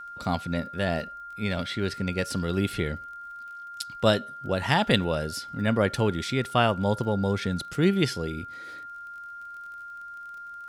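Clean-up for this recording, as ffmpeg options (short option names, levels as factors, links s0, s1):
-af "adeclick=t=4,bandreject=f=1400:w=30"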